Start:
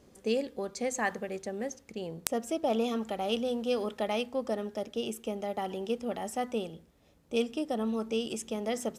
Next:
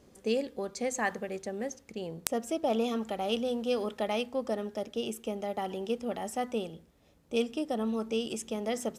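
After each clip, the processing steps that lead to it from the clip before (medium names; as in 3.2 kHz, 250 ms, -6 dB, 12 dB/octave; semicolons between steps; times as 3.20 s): no audible change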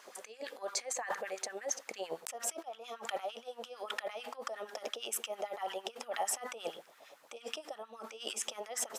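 compressor with a negative ratio -41 dBFS, ratio -1; LFO high-pass sine 8.8 Hz 590–1600 Hz; trim +2 dB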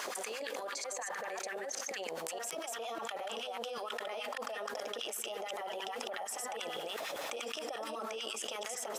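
chunks repeated in reverse 199 ms, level -4.5 dB; level flattener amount 100%; trim -9 dB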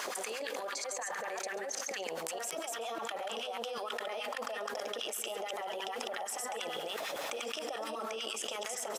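delay 137 ms -16 dB; trim +1.5 dB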